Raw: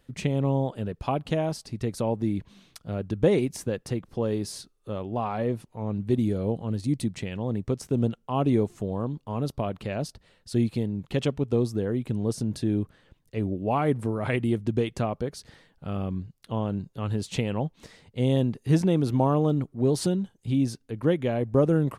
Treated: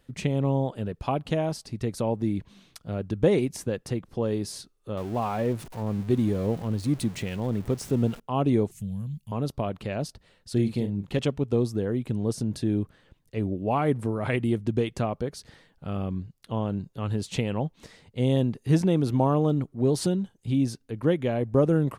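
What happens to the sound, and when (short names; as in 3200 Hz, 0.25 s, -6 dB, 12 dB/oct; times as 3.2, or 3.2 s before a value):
4.97–8.2 zero-crossing step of -39 dBFS
8.71–9.32 EQ curve 200 Hz 0 dB, 290 Hz -25 dB, 1200 Hz -22 dB, 2300 Hz -1 dB, 3800 Hz -4 dB, 5600 Hz +1 dB, 12000 Hz +12 dB
10.53–11.19 doubler 40 ms -8 dB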